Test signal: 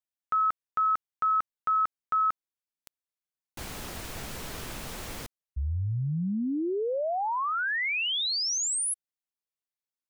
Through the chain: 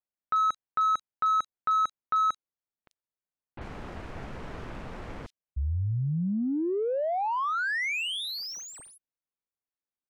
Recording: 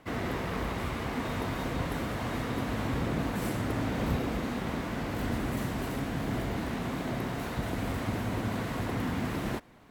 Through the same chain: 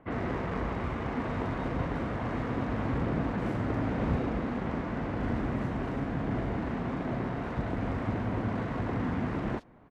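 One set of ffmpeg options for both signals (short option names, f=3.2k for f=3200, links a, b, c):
-filter_complex "[0:a]adynamicsmooth=sensitivity=3.5:basefreq=1.8k,acrossover=split=3800[a][b];[b]adelay=40[c];[a][c]amix=inputs=2:normalize=0,volume=1dB"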